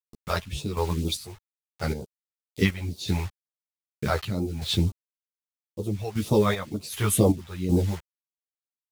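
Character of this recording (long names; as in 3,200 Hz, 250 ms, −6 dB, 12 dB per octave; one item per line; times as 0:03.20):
a quantiser's noise floor 8 bits, dither none
phaser sweep stages 2, 2.1 Hz, lowest notch 250–1,800 Hz
chopped level 1.3 Hz, depth 65%, duty 50%
a shimmering, thickened sound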